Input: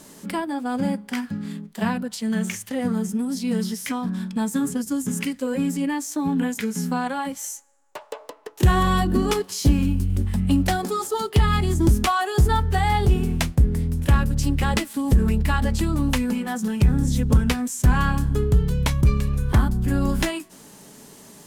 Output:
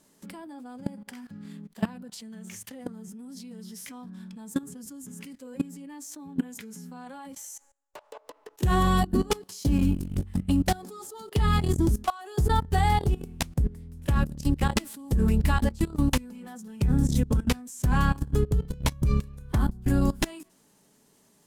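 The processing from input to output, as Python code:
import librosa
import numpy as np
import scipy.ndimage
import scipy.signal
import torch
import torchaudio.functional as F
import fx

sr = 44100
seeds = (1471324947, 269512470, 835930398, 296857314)

y = fx.dynamic_eq(x, sr, hz=2000.0, q=0.76, threshold_db=-39.0, ratio=4.0, max_db=-4)
y = fx.level_steps(y, sr, step_db=21)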